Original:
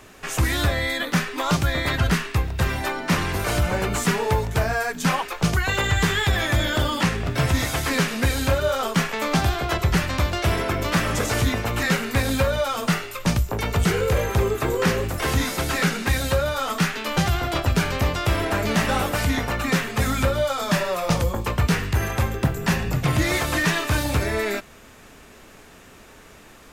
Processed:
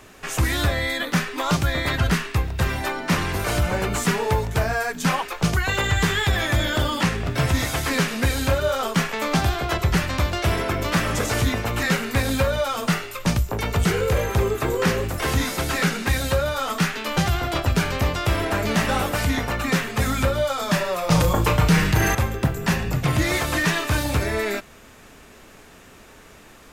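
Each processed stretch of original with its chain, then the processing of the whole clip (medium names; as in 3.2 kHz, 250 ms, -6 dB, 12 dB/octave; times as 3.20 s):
21.11–22.15 s: comb 6.5 ms, depth 53% + flutter echo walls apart 6.1 m, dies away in 0.26 s + level flattener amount 50%
whole clip: none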